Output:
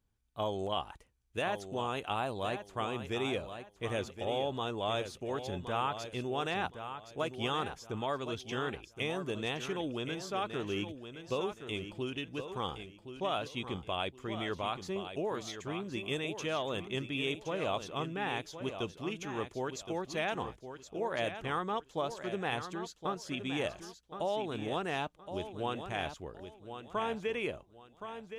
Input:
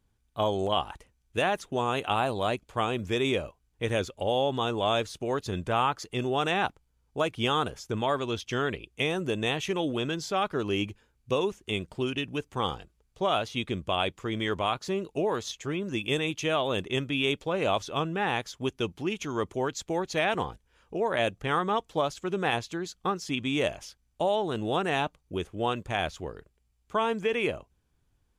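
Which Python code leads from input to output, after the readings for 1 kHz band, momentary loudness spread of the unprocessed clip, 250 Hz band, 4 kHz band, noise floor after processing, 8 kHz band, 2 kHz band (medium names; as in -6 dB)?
-7.0 dB, 6 LU, -7.0 dB, -7.0 dB, -63 dBFS, -7.0 dB, -7.0 dB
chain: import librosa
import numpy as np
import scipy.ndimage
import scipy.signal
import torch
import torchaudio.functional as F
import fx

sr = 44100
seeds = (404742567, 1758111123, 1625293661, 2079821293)

y = fx.echo_feedback(x, sr, ms=1069, feedback_pct=27, wet_db=-9.5)
y = y * librosa.db_to_amplitude(-7.5)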